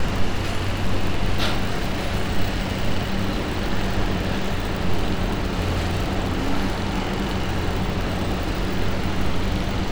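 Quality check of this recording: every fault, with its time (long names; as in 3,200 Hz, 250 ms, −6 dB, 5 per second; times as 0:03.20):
surface crackle 45 per second −24 dBFS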